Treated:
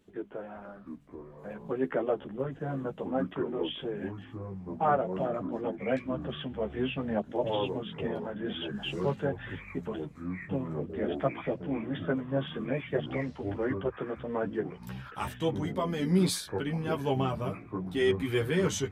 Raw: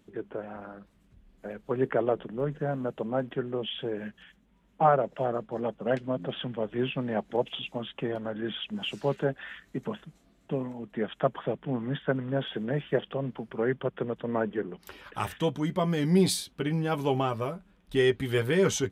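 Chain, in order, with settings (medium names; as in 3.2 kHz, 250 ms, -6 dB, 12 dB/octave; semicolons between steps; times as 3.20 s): chorus voices 4, 0.54 Hz, delay 13 ms, depth 2.3 ms; ever faster or slower copies 640 ms, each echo -6 st, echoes 3, each echo -6 dB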